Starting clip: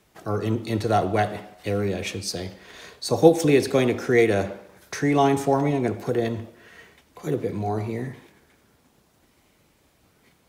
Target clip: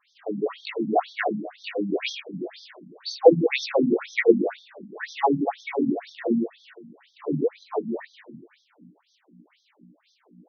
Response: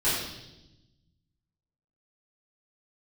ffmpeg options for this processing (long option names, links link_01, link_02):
-filter_complex "[0:a]bandreject=frequency=60:width_type=h:width=6,bandreject=frequency=120:width_type=h:width=6,bandreject=frequency=180:width_type=h:width=6,bandreject=frequency=240:width_type=h:width=6,bandreject=frequency=300:width_type=h:width=6,aeval=exprs='val(0)+0.00316*(sin(2*PI*60*n/s)+sin(2*PI*2*60*n/s)/2+sin(2*PI*3*60*n/s)/3+sin(2*PI*4*60*n/s)/4+sin(2*PI*5*60*n/s)/5)':channel_layout=same,acrossover=split=420[link_01][link_02];[link_01]aeval=exprs='val(0)*(1-0.5/2+0.5/2*cos(2*PI*5.2*n/s))':channel_layout=same[link_03];[link_02]aeval=exprs='val(0)*(1-0.5/2-0.5/2*cos(2*PI*5.2*n/s))':channel_layout=same[link_04];[link_03][link_04]amix=inputs=2:normalize=0,asplit=2[link_05][link_06];[1:a]atrim=start_sample=2205[link_07];[link_06][link_07]afir=irnorm=-1:irlink=0,volume=-14dB[link_08];[link_05][link_08]amix=inputs=2:normalize=0,afftfilt=real='re*between(b*sr/1024,200*pow(4600/200,0.5+0.5*sin(2*PI*2*pts/sr))/1.41,200*pow(4600/200,0.5+0.5*sin(2*PI*2*pts/sr))*1.41)':imag='im*between(b*sr/1024,200*pow(4600/200,0.5+0.5*sin(2*PI*2*pts/sr))/1.41,200*pow(4600/200,0.5+0.5*sin(2*PI*2*pts/sr))*1.41)':win_size=1024:overlap=0.75,volume=5.5dB"